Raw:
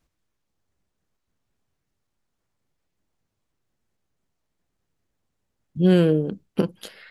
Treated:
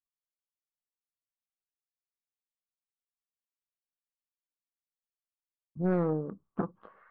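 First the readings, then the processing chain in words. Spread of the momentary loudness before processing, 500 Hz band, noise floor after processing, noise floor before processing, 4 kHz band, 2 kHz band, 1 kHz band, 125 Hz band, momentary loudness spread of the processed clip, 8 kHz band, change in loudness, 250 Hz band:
12 LU, -10.5 dB, under -85 dBFS, -78 dBFS, under -35 dB, -11.0 dB, -1.5 dB, -11.5 dB, 11 LU, no reading, -11.0 dB, -11.5 dB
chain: expander -56 dBFS; four-pole ladder low-pass 1.2 kHz, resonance 80%; loudspeaker Doppler distortion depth 0.5 ms; trim +1 dB

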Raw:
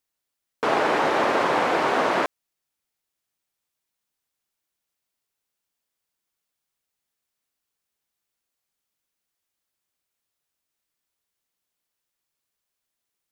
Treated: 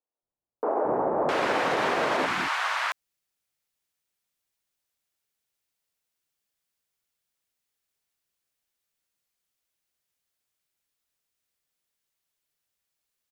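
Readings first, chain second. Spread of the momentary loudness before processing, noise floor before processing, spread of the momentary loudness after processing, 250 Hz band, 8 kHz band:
5 LU, -83 dBFS, 6 LU, -3.5 dB, -1.0 dB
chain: three bands offset in time mids, lows, highs 220/660 ms, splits 280/970 Hz; peak limiter -16 dBFS, peak gain reduction 3.5 dB

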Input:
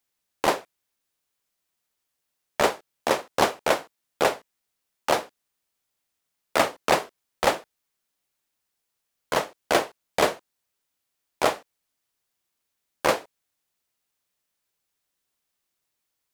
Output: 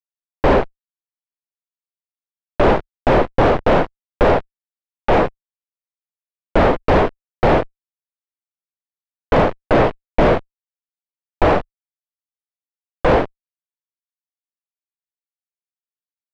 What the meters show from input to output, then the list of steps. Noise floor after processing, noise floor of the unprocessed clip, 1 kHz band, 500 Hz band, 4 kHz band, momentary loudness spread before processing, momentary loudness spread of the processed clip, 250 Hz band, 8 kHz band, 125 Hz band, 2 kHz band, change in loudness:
under -85 dBFS, -81 dBFS, +7.5 dB, +10.0 dB, -1.5 dB, 9 LU, 6 LU, +14.0 dB, under -10 dB, +20.5 dB, +5.0 dB, +8.5 dB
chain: fuzz box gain 45 dB, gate -47 dBFS; low-pass 2.8 kHz 12 dB/octave; tilt EQ -3.5 dB/octave

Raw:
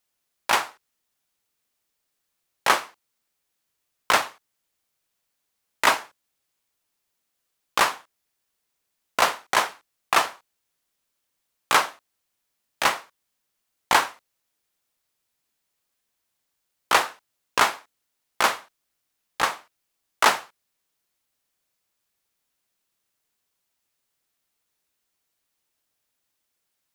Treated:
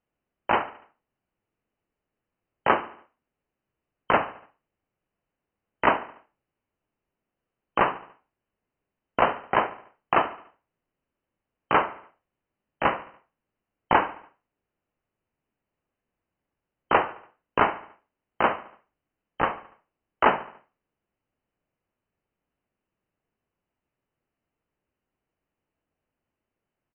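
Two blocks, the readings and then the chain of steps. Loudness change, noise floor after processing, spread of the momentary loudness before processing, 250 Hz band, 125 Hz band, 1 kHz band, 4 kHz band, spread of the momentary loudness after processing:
-2.5 dB, under -85 dBFS, 13 LU, +6.5 dB, +7.5 dB, -0.5 dB, -12.0 dB, 13 LU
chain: brick-wall FIR low-pass 3.1 kHz; tilt shelf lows +8 dB, about 910 Hz; feedback delay 72 ms, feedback 48%, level -17 dB

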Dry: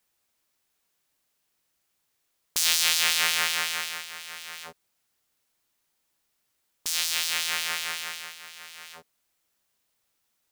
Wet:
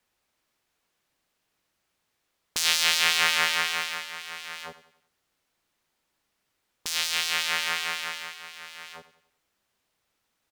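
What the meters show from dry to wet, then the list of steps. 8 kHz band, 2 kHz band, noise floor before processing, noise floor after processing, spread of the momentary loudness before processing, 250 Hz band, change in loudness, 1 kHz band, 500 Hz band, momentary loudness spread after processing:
-3.0 dB, +3.0 dB, -76 dBFS, -78 dBFS, 21 LU, +4.0 dB, 0.0 dB, +4.0 dB, +4.0 dB, 20 LU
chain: treble shelf 5.7 kHz -11.5 dB; vibrato 1.7 Hz 8 cents; feedback delay 94 ms, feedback 43%, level -15 dB; trim +4 dB

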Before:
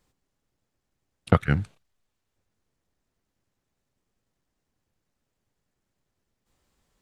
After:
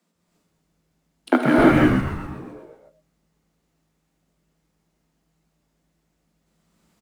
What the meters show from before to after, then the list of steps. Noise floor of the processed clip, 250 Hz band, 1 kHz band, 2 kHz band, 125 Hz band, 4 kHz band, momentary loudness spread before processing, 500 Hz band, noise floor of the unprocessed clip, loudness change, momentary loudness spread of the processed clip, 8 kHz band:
-72 dBFS, +13.5 dB, +9.5 dB, +11.0 dB, +1.5 dB, +9.5 dB, 11 LU, +10.5 dB, -81 dBFS, +6.5 dB, 20 LU, no reading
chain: peaking EQ 230 Hz -3.5 dB 0.32 oct; in parallel at -12 dB: word length cut 6-bit, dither none; on the sum: frequency shift +160 Hz; frequency-shifting echo 127 ms, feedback 61%, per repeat -110 Hz, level -6.5 dB; gated-style reverb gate 370 ms rising, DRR -6 dB; trim -1 dB

